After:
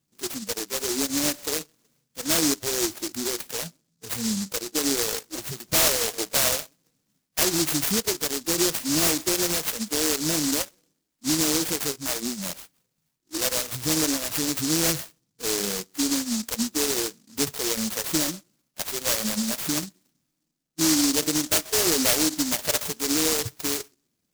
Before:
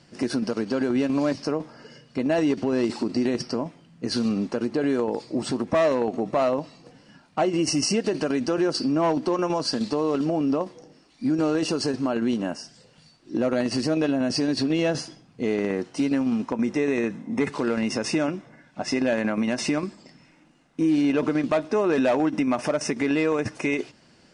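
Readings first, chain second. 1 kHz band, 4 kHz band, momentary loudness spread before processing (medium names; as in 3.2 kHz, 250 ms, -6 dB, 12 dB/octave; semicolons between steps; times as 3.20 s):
-4.5 dB, +7.5 dB, 8 LU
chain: tape echo 128 ms, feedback 26%, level -16 dB, low-pass 1.1 kHz; spectral noise reduction 21 dB; delay time shaken by noise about 5.8 kHz, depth 0.39 ms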